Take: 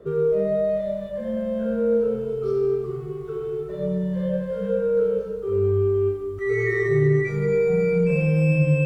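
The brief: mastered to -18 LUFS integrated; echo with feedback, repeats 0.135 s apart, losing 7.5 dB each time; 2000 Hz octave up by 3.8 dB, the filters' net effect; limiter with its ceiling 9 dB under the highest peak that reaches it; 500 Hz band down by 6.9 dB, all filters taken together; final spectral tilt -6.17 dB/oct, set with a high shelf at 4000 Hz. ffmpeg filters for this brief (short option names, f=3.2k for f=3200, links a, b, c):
-af "equalizer=f=500:t=o:g=-8.5,equalizer=f=2k:t=o:g=6.5,highshelf=f=4k:g=-8.5,alimiter=limit=-20dB:level=0:latency=1,aecho=1:1:135|270|405|540|675:0.422|0.177|0.0744|0.0312|0.0131,volume=9dB"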